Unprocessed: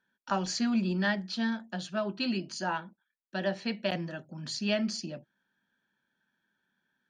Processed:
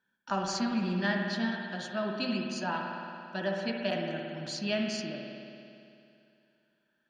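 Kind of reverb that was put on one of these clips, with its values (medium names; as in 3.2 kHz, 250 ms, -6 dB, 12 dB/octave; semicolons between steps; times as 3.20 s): spring tank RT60 2.6 s, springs 56 ms, chirp 50 ms, DRR 1 dB; trim -2 dB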